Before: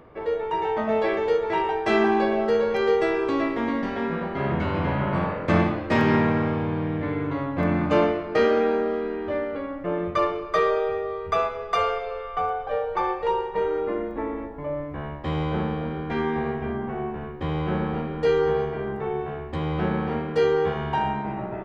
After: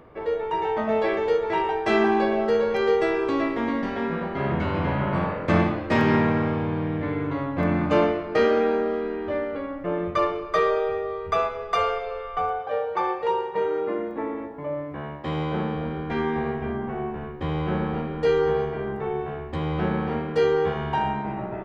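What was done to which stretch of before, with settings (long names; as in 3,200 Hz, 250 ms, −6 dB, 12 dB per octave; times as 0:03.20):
0:12.59–0:15.75: high-pass filter 120 Hz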